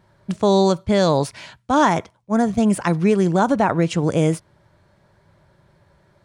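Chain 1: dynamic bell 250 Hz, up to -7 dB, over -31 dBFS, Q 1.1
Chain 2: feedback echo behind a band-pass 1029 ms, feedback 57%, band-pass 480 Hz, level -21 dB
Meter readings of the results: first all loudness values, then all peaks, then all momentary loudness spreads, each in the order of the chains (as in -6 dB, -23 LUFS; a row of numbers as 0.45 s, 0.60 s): -22.0 LUFS, -19.0 LUFS; -6.0 dBFS, -5.0 dBFS; 9 LU, 8 LU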